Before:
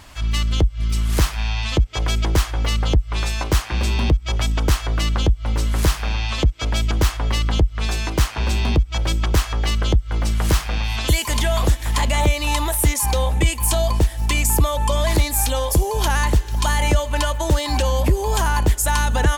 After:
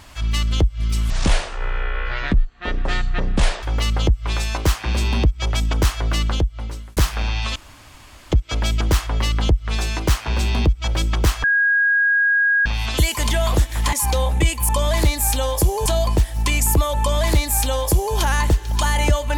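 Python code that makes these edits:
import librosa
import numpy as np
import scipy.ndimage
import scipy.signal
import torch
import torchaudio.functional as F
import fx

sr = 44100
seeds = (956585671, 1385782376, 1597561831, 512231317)

y = fx.edit(x, sr, fx.speed_span(start_s=1.1, length_s=1.39, speed=0.55),
    fx.fade_out_span(start_s=5.09, length_s=0.74),
    fx.insert_room_tone(at_s=6.42, length_s=0.76),
    fx.bleep(start_s=9.54, length_s=1.22, hz=1640.0, db=-13.5),
    fx.cut(start_s=12.03, length_s=0.9),
    fx.duplicate(start_s=14.82, length_s=1.17, to_s=13.69), tone=tone)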